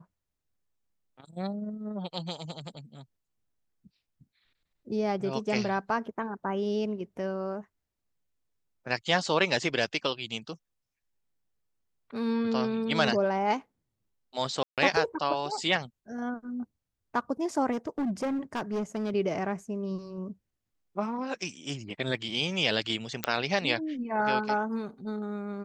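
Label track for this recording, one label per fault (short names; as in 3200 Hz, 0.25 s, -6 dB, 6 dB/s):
14.630000	14.780000	gap 0.147 s
17.710000	19.110000	clipped -26.5 dBFS
23.240000	23.240000	pop -11 dBFS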